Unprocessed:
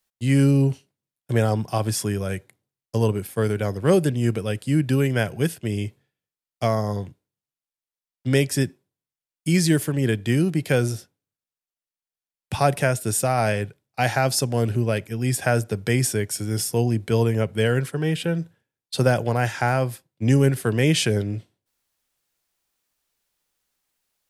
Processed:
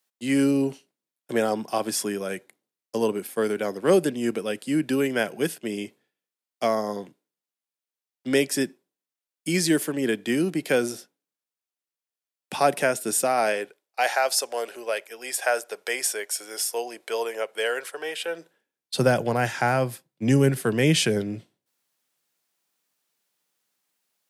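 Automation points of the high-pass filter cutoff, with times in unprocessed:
high-pass filter 24 dB per octave
0:13.20 220 Hz
0:14.17 500 Hz
0:18.26 500 Hz
0:18.94 140 Hz

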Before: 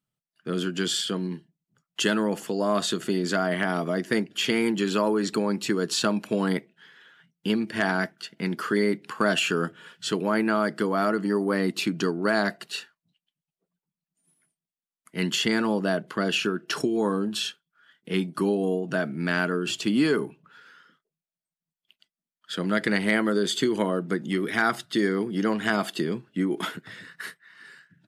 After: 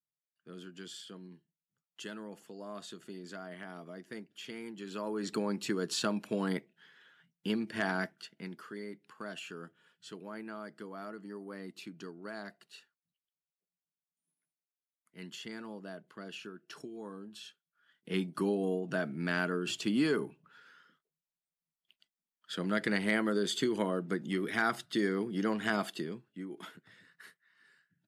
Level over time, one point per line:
0:04.76 −20 dB
0:05.35 −8 dB
0:08.16 −8 dB
0:08.68 −20 dB
0:17.42 −20 dB
0:18.09 −7 dB
0:25.81 −7 dB
0:26.38 −17 dB

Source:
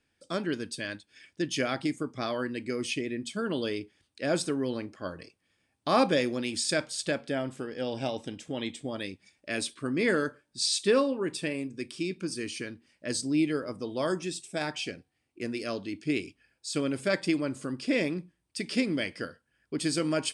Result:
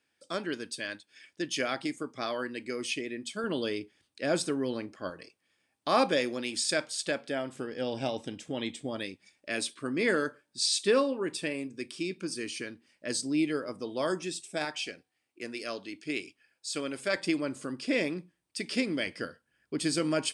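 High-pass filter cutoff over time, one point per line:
high-pass filter 6 dB per octave
380 Hz
from 0:03.44 150 Hz
from 0:05.10 330 Hz
from 0:07.55 87 Hz
from 0:09.04 230 Hz
from 0:14.65 570 Hz
from 0:17.16 240 Hz
from 0:19.07 110 Hz

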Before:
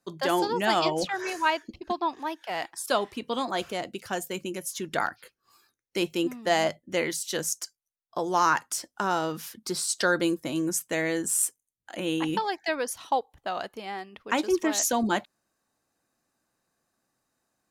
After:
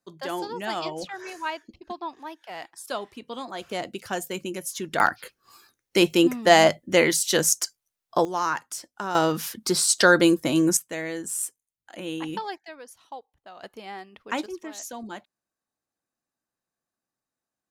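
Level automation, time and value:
−6 dB
from 0:03.71 +1.5 dB
from 0:05.00 +8.5 dB
from 0:08.25 −3.5 dB
from 0:09.15 +7.5 dB
from 0:10.77 −4 dB
from 0:12.58 −14 dB
from 0:13.63 −2.5 dB
from 0:14.46 −12 dB

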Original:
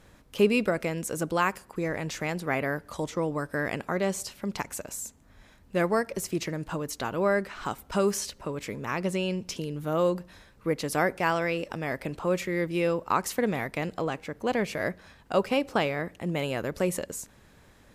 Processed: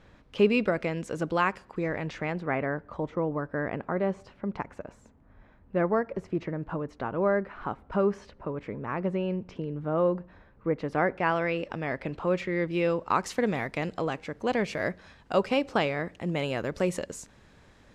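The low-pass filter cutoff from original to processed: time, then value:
0:01.72 3,900 Hz
0:02.89 1,500 Hz
0:10.70 1,500 Hz
0:11.59 3,500 Hz
0:12.48 3,500 Hz
0:13.44 6,600 Hz

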